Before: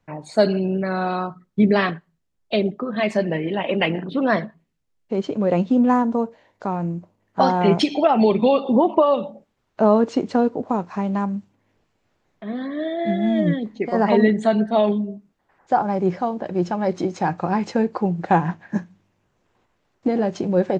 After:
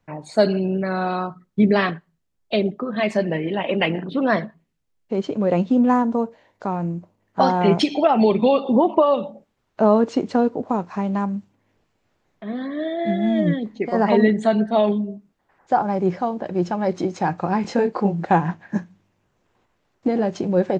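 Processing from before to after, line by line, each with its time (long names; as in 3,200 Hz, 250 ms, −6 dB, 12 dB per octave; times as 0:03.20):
0:17.62–0:18.26: double-tracking delay 25 ms −3 dB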